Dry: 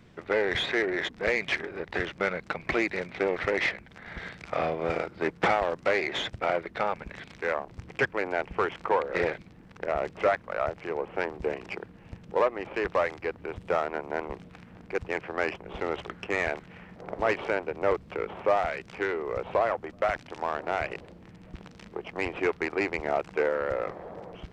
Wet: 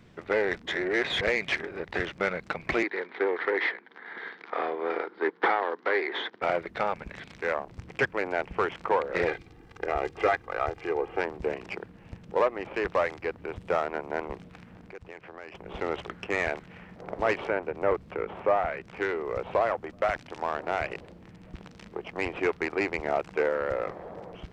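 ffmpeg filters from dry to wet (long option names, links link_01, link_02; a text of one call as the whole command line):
ffmpeg -i in.wav -filter_complex "[0:a]asettb=1/sr,asplit=3[link_01][link_02][link_03];[link_01]atrim=end=2.834[link_04];[link_02]atrim=start=2.83:end=6.42,asetpts=PTS-STARTPTS,afade=type=in:duration=0.004:curve=qsin,afade=type=out:start_time=3.586:duration=0.004:curve=qsin,highpass=frequency=290:width=0.5412,highpass=frequency=290:width=1.3066,equalizer=frequency=420:width_type=q:width=4:gain=4,equalizer=frequency=600:width_type=q:width=4:gain=-9,equalizer=frequency=960:width_type=q:width=4:gain=4,equalizer=frequency=1700:width_type=q:width=4:gain=4,equalizer=frequency=2600:width_type=q:width=4:gain=-9,lowpass=frequency=3900:width=0.5412,lowpass=frequency=3900:width=1.3066[link_05];[link_03]atrim=start=6.416[link_06];[link_04][link_05]acrossfade=duration=0.004:curve1=hsin:curve2=qsin[link_07];[link_07][link_06]acrossfade=duration=0.004:curve1=qsin:curve2=hsin,asettb=1/sr,asplit=3[link_08][link_09][link_10];[link_08]atrim=end=9.274[link_11];[link_09]atrim=start=9.27:end=11.21,asetpts=PTS-STARTPTS,afade=type=in:duration=0.004:curve=qsin,afade=type=out:start_time=1.936:duration=0.004:curve=qsin,aecho=1:1:2.5:0.65,atrim=end_sample=85554[link_12];[link_10]atrim=start=11.206[link_13];[link_11][link_12]acrossfade=duration=0.004:curve1=hsin:curve2=qsin[link_14];[link_14][link_13]acrossfade=duration=0.004:curve1=qsin:curve2=hsin,asplit=3[link_15][link_16][link_17];[link_15]afade=type=out:start_time=14.74:duration=0.02[link_18];[link_16]acompressor=threshold=-44dB:ratio=3:attack=3.2:release=140:knee=1:detection=peak,afade=type=in:start_time=14.74:duration=0.02,afade=type=out:start_time=15.54:duration=0.02[link_19];[link_17]afade=type=in:start_time=15.54:duration=0.02[link_20];[link_18][link_19][link_20]amix=inputs=3:normalize=0,asettb=1/sr,asplit=3[link_21][link_22][link_23];[link_21]atrim=end=17.474[link_24];[link_22]atrim=start=17.47:end=18.96,asetpts=PTS-STARTPTS,afade=type=in:duration=0.004:curve=qsin,afade=type=out:start_time=1.486:duration=0.004:curve=qsin,acrossover=split=2600[link_25][link_26];[link_26]acompressor=threshold=-57dB:ratio=4:attack=1:release=60[link_27];[link_25][link_27]amix=inputs=2:normalize=0[link_28];[link_23]atrim=start=18.956[link_29];[link_24][link_28]acrossfade=duration=0.004:curve1=hsin:curve2=qsin[link_30];[link_30][link_29]acrossfade=duration=0.004:curve1=qsin:curve2=hsin,asplit=3[link_31][link_32][link_33];[link_31]atrim=end=0.552[link_34];[link_32]atrim=start=0.548:end=1.212,asetpts=PTS-STARTPTS,areverse[link_35];[link_33]atrim=start=1.208[link_36];[link_34][link_35]acrossfade=duration=0.004:curve1=hsin:curve2=hsin[link_37];[link_37][link_36]acrossfade=duration=0.004:curve1=hsin:curve2=hsin" out.wav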